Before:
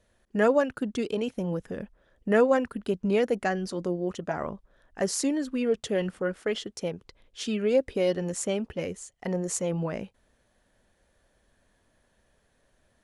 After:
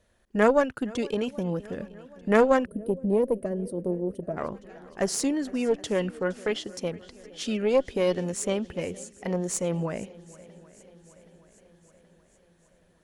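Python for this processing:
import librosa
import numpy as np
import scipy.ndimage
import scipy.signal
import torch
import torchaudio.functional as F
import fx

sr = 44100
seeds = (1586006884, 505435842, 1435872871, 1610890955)

y = fx.echo_swing(x, sr, ms=775, ratio=1.5, feedback_pct=54, wet_db=-21.0)
y = fx.spec_box(y, sr, start_s=2.65, length_s=1.72, low_hz=680.0, high_hz=8200.0, gain_db=-20)
y = fx.cheby_harmonics(y, sr, harmonics=(2, 5, 7), levels_db=(-9, -25, -30), full_scale_db=-8.5)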